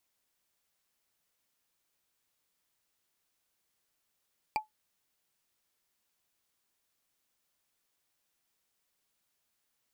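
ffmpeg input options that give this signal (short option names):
-f lavfi -i "aevalsrc='0.0708*pow(10,-3*t/0.14)*sin(2*PI*861*t)+0.0422*pow(10,-3*t/0.041)*sin(2*PI*2373.8*t)+0.0251*pow(10,-3*t/0.018)*sin(2*PI*4652.8*t)+0.015*pow(10,-3*t/0.01)*sin(2*PI*7691.3*t)+0.00891*pow(10,-3*t/0.006)*sin(2*PI*11485.7*t)':d=0.45:s=44100"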